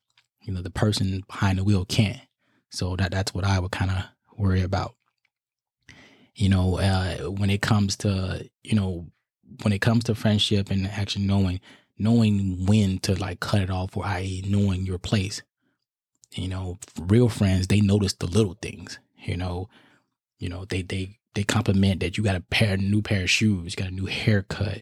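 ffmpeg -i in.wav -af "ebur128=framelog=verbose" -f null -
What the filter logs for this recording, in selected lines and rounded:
Integrated loudness:
  I:         -24.6 LUFS
  Threshold: -35.3 LUFS
Loudness range:
  LRA:         4.6 LU
  Threshold: -45.5 LUFS
  LRA low:   -28.2 LUFS
  LRA high:  -23.6 LUFS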